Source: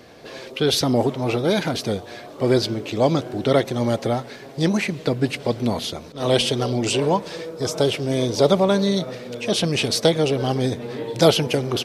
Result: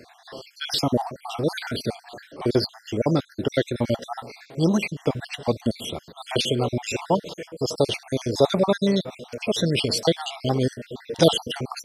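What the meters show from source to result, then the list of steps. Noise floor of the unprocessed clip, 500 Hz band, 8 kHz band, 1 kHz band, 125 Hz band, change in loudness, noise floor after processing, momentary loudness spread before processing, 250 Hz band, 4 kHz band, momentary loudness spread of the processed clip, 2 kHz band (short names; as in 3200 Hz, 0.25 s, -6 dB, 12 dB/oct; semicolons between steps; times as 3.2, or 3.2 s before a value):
-40 dBFS, -4.0 dB, -4.5 dB, -3.5 dB, -3.0 dB, -3.0 dB, -54 dBFS, 11 LU, -3.0 dB, -3.0 dB, 15 LU, -4.0 dB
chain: random spectral dropouts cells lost 57%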